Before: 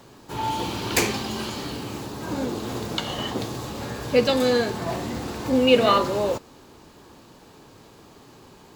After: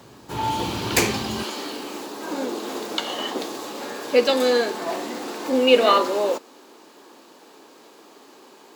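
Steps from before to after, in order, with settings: high-pass 48 Hz 24 dB/octave, from 1.43 s 270 Hz; trim +2 dB

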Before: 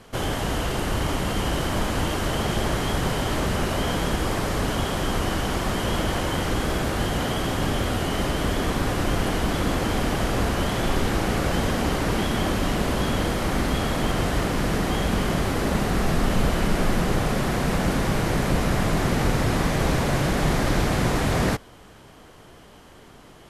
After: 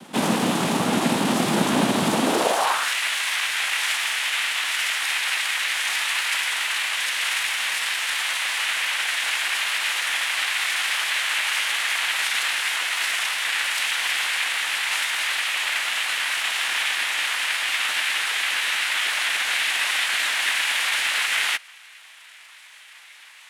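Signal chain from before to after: noise-vocoded speech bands 4; formant shift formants +5 st; high-pass sweep 210 Hz -> 2 kHz, 2.18–2.94 s; trim +4 dB

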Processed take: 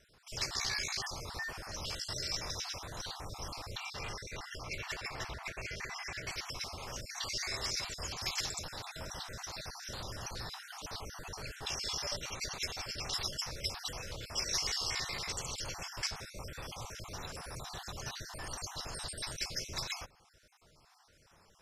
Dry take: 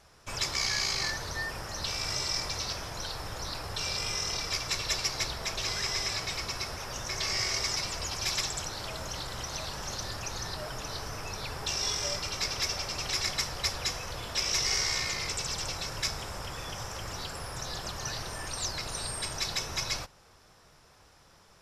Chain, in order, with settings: random holes in the spectrogram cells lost 39%; 3.77–6.27 s: resonant high shelf 3.1 kHz -7.5 dB, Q 1.5; trim -4 dB

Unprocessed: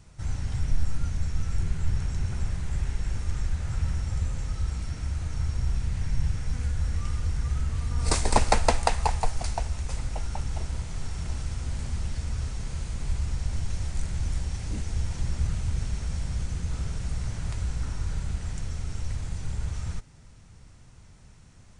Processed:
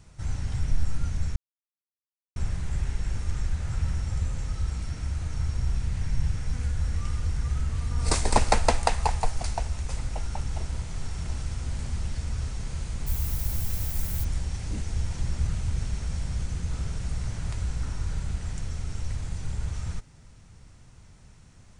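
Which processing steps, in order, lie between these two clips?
1.36–2.36 s: mute; 13.06–14.23 s: added noise violet -37 dBFS

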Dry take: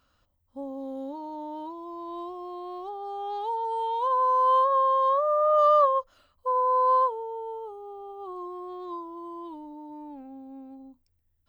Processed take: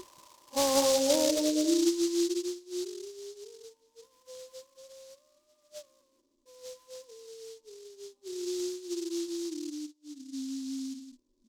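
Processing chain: spectral levelling over time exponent 0.4; upward compressor, threshold -36 dBFS; low-pass sweep 900 Hz -> 200 Hz, 0.54–2.59 s; 1.73–2.52 s: dynamic bell 310 Hz, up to -4 dB, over -45 dBFS, Q 2.3; on a send: delay 184 ms -4.5 dB; 9.86–10.51 s: on the sum: gate -37 dBFS, range -11 dB; small resonant body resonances 350/1000/1900/2800 Hz, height 14 dB, ringing for 45 ms; spectral noise reduction 25 dB; delay time shaken by noise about 5.2 kHz, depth 0.13 ms; trim -4.5 dB

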